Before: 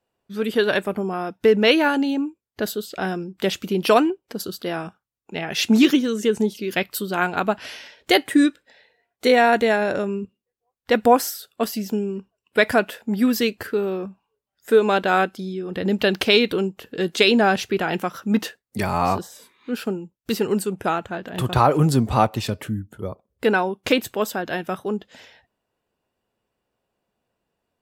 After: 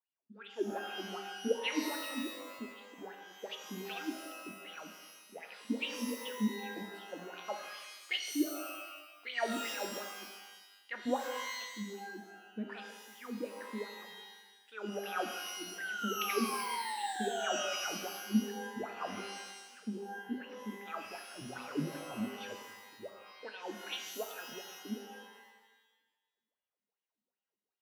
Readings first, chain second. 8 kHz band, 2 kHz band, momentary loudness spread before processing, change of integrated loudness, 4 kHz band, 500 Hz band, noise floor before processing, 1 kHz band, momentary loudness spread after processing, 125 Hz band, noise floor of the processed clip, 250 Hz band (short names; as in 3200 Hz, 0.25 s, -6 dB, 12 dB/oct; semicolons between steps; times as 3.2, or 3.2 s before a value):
-9.0 dB, -16.0 dB, 14 LU, -18.0 dB, -14.5 dB, -20.5 dB, -82 dBFS, -17.5 dB, 15 LU, -23.0 dB, under -85 dBFS, -17.5 dB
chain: wah 2.6 Hz 210–3300 Hz, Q 8.2; painted sound fall, 15.78–17.73, 560–1600 Hz -32 dBFS; shimmer reverb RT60 1.1 s, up +12 st, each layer -2 dB, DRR 5 dB; gain -8.5 dB